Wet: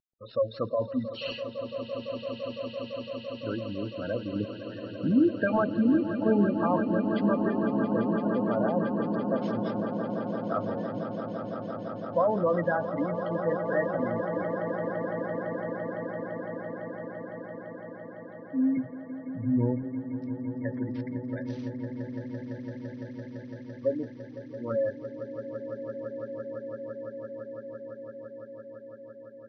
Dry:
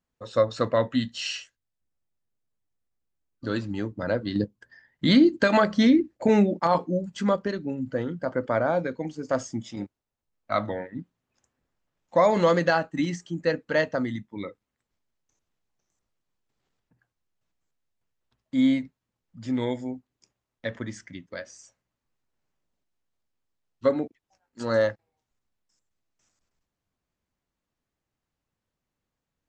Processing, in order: CVSD 32 kbps; LPF 4900 Hz 24 dB/oct; spectral gate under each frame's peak -15 dB strong; 18.77–19.83 bell 120 Hz +13 dB 2.1 oct; swelling echo 0.169 s, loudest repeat 8, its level -12 dB; gain -4.5 dB

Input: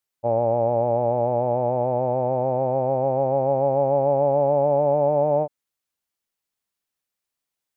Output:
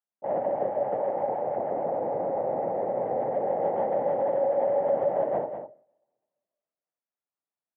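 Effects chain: in parallel at -10 dB: wavefolder -20 dBFS; on the sum: LPF 1200 Hz 12 dB/oct; notches 60/120/180/240/300/360/420/480/540/600 Hz; two-slope reverb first 0.69 s, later 2 s, from -21 dB, DRR 18 dB; LPC vocoder at 8 kHz whisper; Bessel high-pass 210 Hz, order 8; on a send: echo 0.201 s -8.5 dB; on the sum: gain -6.5 dB

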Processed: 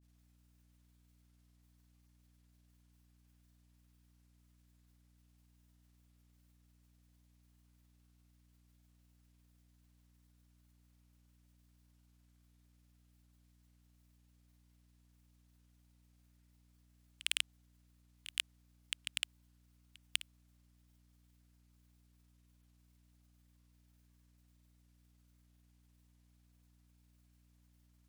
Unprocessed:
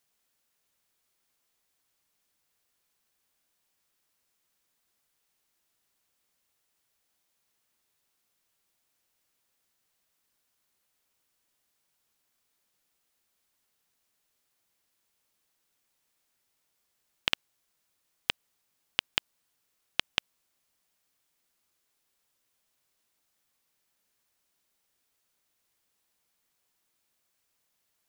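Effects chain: wavefolder -10.5 dBFS; grains; hum 60 Hz, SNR 15 dB; gain -1 dB

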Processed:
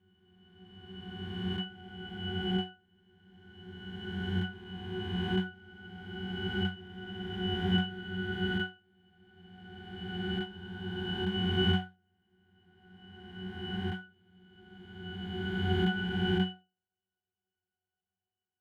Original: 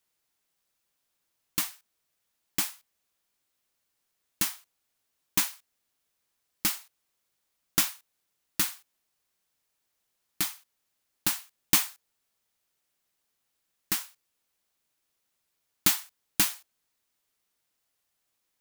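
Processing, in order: spectral swells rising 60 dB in 2.95 s; resonant high shelf 4000 Hz -11.5 dB, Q 1.5; sample leveller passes 1; octave resonator F#, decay 0.28 s; gain +8 dB

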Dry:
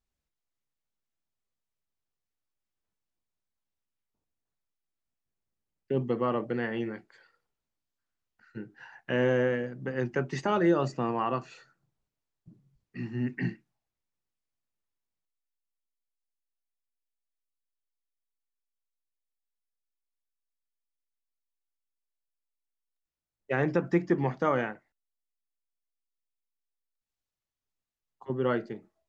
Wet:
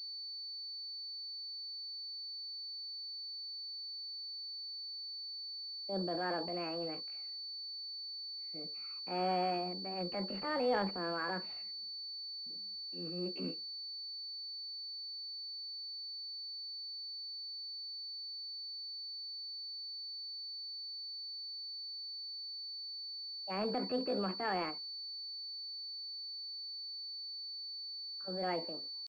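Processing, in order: transient shaper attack -5 dB, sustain +7 dB; pitch shift +6.5 st; pulse-width modulation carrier 4500 Hz; gain -8 dB

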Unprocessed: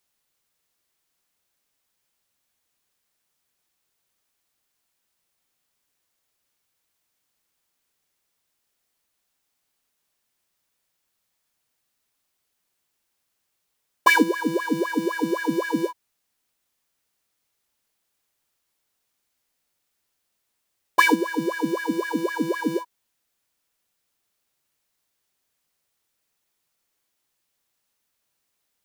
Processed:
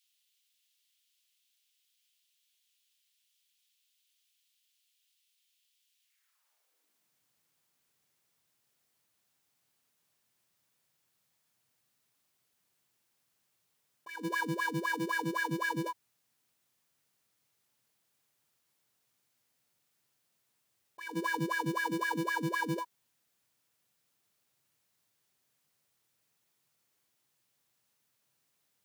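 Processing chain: negative-ratio compressor -30 dBFS, ratio -1; high-pass sweep 3100 Hz -> 120 Hz, 6.01–7.18; gain -6.5 dB

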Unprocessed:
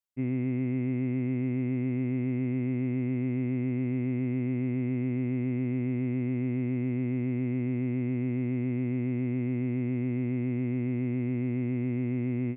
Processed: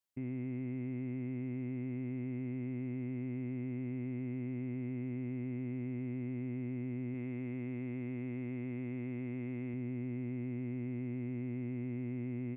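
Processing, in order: 7.14–9.74 low shelf 370 Hz -6 dB; limiter -33 dBFS, peak gain reduction 11.5 dB; gain +1 dB

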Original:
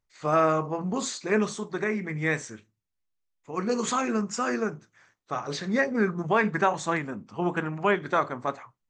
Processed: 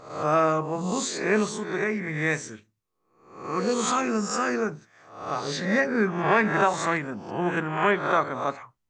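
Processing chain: spectral swells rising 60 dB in 0.62 s

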